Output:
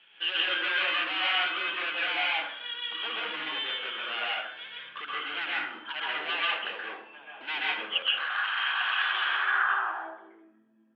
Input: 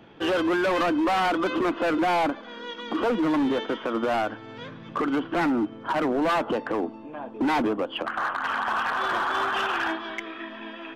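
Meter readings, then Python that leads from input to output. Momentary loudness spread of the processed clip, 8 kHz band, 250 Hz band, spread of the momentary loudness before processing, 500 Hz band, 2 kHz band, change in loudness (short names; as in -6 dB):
12 LU, n/a, -24.5 dB, 13 LU, -17.0 dB, +2.5 dB, -3.0 dB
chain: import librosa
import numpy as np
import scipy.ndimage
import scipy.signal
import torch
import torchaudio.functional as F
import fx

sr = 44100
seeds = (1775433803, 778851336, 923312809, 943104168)

y = np.diff(x, prepend=0.0)
y = fx.filter_sweep_lowpass(y, sr, from_hz=2800.0, to_hz=190.0, start_s=9.22, end_s=10.52, q=3.2)
y = fx.cabinet(y, sr, low_hz=120.0, low_slope=12, high_hz=4300.0, hz=(150.0, 270.0, 670.0, 1600.0, 3100.0), db=(4, -9, -3, 6, 5))
y = fx.rev_plate(y, sr, seeds[0], rt60_s=0.66, hf_ratio=0.55, predelay_ms=115, drr_db=-5.5)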